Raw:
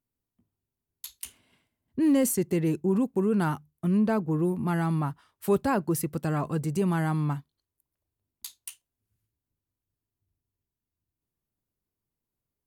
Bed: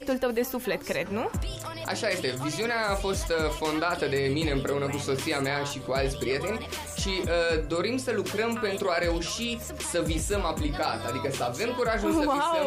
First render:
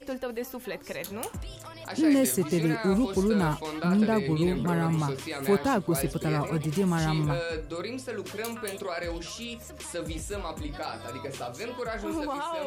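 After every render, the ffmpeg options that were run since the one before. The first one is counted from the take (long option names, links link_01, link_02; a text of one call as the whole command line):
ffmpeg -i in.wav -i bed.wav -filter_complex "[1:a]volume=-7dB[link_01];[0:a][link_01]amix=inputs=2:normalize=0" out.wav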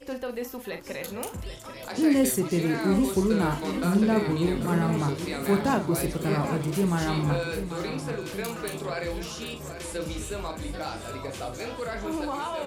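ffmpeg -i in.wav -filter_complex "[0:a]asplit=2[link_01][link_02];[link_02]adelay=41,volume=-8dB[link_03];[link_01][link_03]amix=inputs=2:normalize=0,aecho=1:1:788|1576|2364|3152|3940|4728|5516:0.299|0.176|0.104|0.0613|0.0362|0.0213|0.0126" out.wav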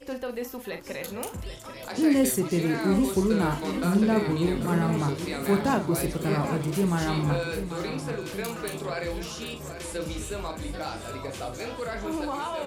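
ffmpeg -i in.wav -af anull out.wav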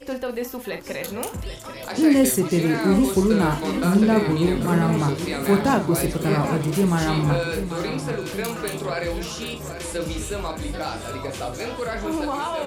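ffmpeg -i in.wav -af "volume=5dB" out.wav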